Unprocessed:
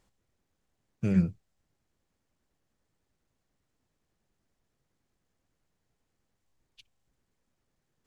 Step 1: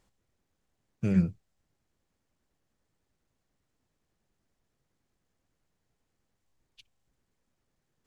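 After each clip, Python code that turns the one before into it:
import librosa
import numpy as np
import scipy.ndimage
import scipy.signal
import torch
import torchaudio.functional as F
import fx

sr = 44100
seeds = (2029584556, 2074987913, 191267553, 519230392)

y = x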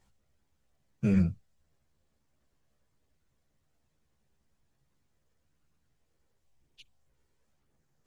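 y = fx.chorus_voices(x, sr, voices=4, hz=0.5, base_ms=14, depth_ms=1.1, mix_pct=50)
y = y * 10.0 ** (4.0 / 20.0)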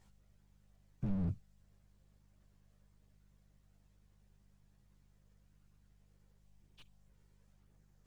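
y = fx.dmg_buzz(x, sr, base_hz=50.0, harmonics=4, level_db=-70.0, tilt_db=-5, odd_only=False)
y = fx.slew_limit(y, sr, full_power_hz=3.2)
y = y * 10.0 ** (1.0 / 20.0)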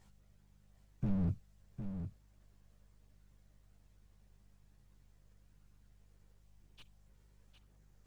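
y = x + 10.0 ** (-8.5 / 20.0) * np.pad(x, (int(757 * sr / 1000.0), 0))[:len(x)]
y = y * 10.0 ** (2.0 / 20.0)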